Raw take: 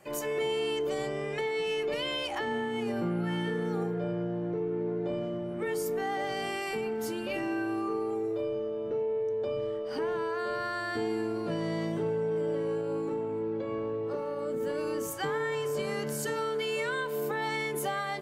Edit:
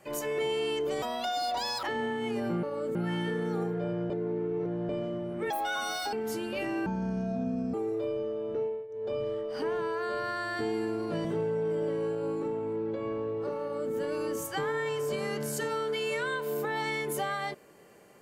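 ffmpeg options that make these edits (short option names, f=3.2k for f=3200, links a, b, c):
-filter_complex "[0:a]asplit=13[a][b][c][d][e][f][g][h][i][j][k][l][m];[a]atrim=end=1.024[n];[b]atrim=start=1.02:end=2.35,asetpts=PTS-STARTPTS,asetrate=72324,aresample=44100,atrim=end_sample=35764,asetpts=PTS-STARTPTS[o];[c]atrim=start=2.346:end=3.152[p];[d]atrim=start=14.278:end=14.602[q];[e]atrim=start=3.148:end=4.302[r];[f]atrim=start=4.298:end=5.092,asetpts=PTS-STARTPTS,areverse[s];[g]atrim=start=5.088:end=5.704[t];[h]atrim=start=5.7:end=6.87,asetpts=PTS-STARTPTS,asetrate=82026,aresample=44100,atrim=end_sample=27740,asetpts=PTS-STARTPTS[u];[i]atrim=start=6.866:end=7.604[v];[j]atrim=start=7.6:end=8.1,asetpts=PTS-STARTPTS,asetrate=25137,aresample=44100,atrim=end_sample=38684,asetpts=PTS-STARTPTS[w];[k]atrim=start=8.096:end=9.24,asetpts=PTS-STARTPTS,afade=t=out:st=0.894:d=0.25:silence=0.158489[x];[l]atrim=start=9.24:end=11.612,asetpts=PTS-STARTPTS,afade=t=in:d=0.25:silence=0.158489[y];[m]atrim=start=11.908[z];[n][o]acrossfade=d=0.004:c1=hsin:c2=hsin[aa];[aa][p]acrossfade=d=0.004:c1=hsin:c2=hsin[ab];[ab][q]acrossfade=d=0.004:c1=hsin:c2=hsin[ac];[ac][r]acrossfade=d=0.004:c1=hsin:c2=hsin[ad];[ad][s]acrossfade=d=0.004:c1=hsin:c2=hsin[ae];[ae][t]acrossfade=d=0.004:c1=hsin:c2=hsin[af];[af][u]acrossfade=d=0.004:c1=hsin:c2=hsin[ag];[ag][v]acrossfade=d=0.004:c1=hsin:c2=hsin[ah];[ah][w]acrossfade=d=0.004:c1=hsin:c2=hsin[ai];[x][y]concat=n=2:v=0:a=1[aj];[ai][aj]acrossfade=d=0.004:c1=hsin:c2=hsin[ak];[ak][z]acrossfade=d=0.004:c1=hsin:c2=hsin"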